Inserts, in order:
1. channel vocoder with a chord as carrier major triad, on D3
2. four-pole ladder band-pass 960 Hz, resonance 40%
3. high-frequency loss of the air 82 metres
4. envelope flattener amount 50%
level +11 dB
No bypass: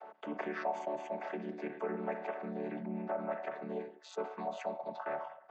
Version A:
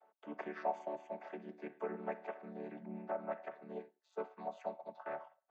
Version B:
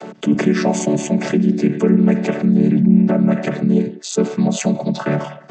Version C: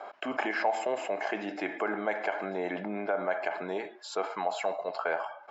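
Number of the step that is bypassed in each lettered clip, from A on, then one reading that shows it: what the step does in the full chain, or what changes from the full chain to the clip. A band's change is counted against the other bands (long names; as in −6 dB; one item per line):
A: 4, change in crest factor +4.5 dB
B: 2, 125 Hz band +16.0 dB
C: 1, 125 Hz band −7.5 dB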